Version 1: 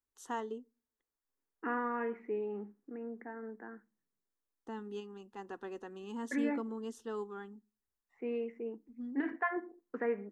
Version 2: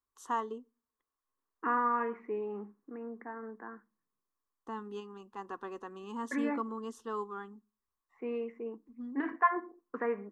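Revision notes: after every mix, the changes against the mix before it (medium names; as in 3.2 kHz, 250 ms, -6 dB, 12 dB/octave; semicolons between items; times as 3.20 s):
master: add peaking EQ 1.1 kHz +13.5 dB 0.41 oct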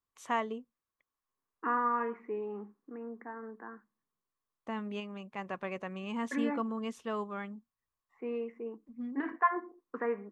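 first voice: remove static phaser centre 610 Hz, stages 6; reverb: off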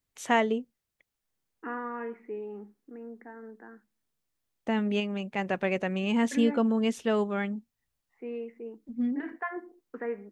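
first voice +11.0 dB; master: add peaking EQ 1.1 kHz -13.5 dB 0.41 oct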